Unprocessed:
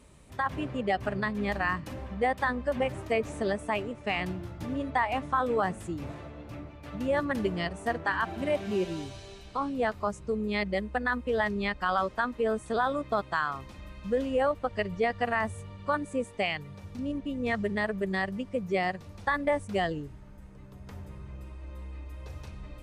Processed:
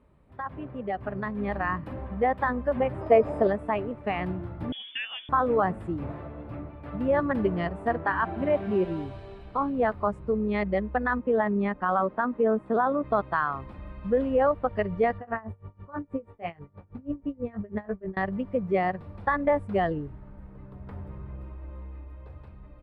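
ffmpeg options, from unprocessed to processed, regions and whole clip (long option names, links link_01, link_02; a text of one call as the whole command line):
ffmpeg -i in.wav -filter_complex "[0:a]asettb=1/sr,asplit=3[link_01][link_02][link_03];[link_01]atrim=end=3.014[link_04];[link_02]atrim=start=3.01:end=3.47,asetpts=PTS-STARTPTS,afade=type=in:duration=0.004:curve=qsin,afade=type=out:start_time=0.456:duration=0.004:curve=qsin,aeval=exprs='val(0)+0.00158*sin(2*PI*5000*n/s)':channel_layout=same,equalizer=frequency=630:width_type=o:width=1.3:gain=9[link_05];[link_03]atrim=start=3.466[link_06];[link_04][link_05]acrossfade=duration=0.004:curve1=hsin:curve2=qsin[link_07];[link_07][link_06]acrossfade=duration=0.004:curve1=qsin:curve2=hsin,asettb=1/sr,asplit=3[link_08][link_09][link_10];[link_08]atrim=end=4.724[link_11];[link_09]atrim=start=4.72:end=5.29,asetpts=PTS-STARTPTS,afade=type=in:duration=0.004:curve=qsin,afade=type=out:start_time=0.566:duration=0.004:curve=qsin,equalizer=frequency=2500:width=1.7:gain=-13.5,lowpass=frequency=3100:width_type=q:width=0.5098,lowpass=frequency=3100:width_type=q:width=0.6013,lowpass=frequency=3100:width_type=q:width=0.9,lowpass=frequency=3100:width_type=q:width=2.563,afreqshift=-3600[link_12];[link_10]atrim=start=5.286[link_13];[link_11][link_12]acrossfade=duration=0.004:curve1=hsin:curve2=qsin[link_14];[link_14][link_13]acrossfade=duration=0.004:curve1=qsin:curve2=hsin,asettb=1/sr,asplit=3[link_15][link_16][link_17];[link_15]atrim=end=11.194[link_18];[link_16]atrim=start=11.19:end=13.04,asetpts=PTS-STARTPTS,afade=type=in:duration=0.004:curve=qsin,afade=type=out:start_time=1.846:duration=0.004:curve=qsin,lowpass=frequency=1700:poles=1,lowshelf=frequency=130:width_type=q:width=1.5:gain=-11.5[link_19];[link_17]atrim=start=13.036[link_20];[link_18][link_19]acrossfade=duration=0.004:curve1=hsin:curve2=qsin[link_21];[link_21][link_20]acrossfade=duration=0.004:curve1=qsin:curve2=hsin,asettb=1/sr,asplit=3[link_22][link_23][link_24];[link_22]atrim=end=15.184[link_25];[link_23]atrim=start=15.18:end=18.17,asetpts=PTS-STARTPTS,afade=type=in:duration=0.004:curve=qsin,afade=type=out:start_time=2.986:duration=0.004:curve=qsin,lowpass=frequency=1500:poles=1,asplit=2[link_26][link_27];[link_27]adelay=18,volume=-7.5dB[link_28];[link_26][link_28]amix=inputs=2:normalize=0,atrim=end_sample=131859,aeval=exprs='val(0)*pow(10,-25*(0.5-0.5*cos(2*PI*6.2*n/s))/20)':channel_layout=same[link_29];[link_24]atrim=start=18.166[link_30];[link_25][link_29]acrossfade=duration=0.004:curve1=hsin:curve2=qsin[link_31];[link_31][link_30]acrossfade=duration=0.004:curve1=qsin:curve2=hsin,firequalizer=gain_entry='entry(1100,0);entry(2700,-10);entry(5800,-22)':delay=0.05:min_phase=1,dynaudnorm=framelen=250:gausssize=11:maxgain=9dB,equalizer=frequency=6300:width_type=o:width=0.3:gain=-9,volume=-5dB" out.wav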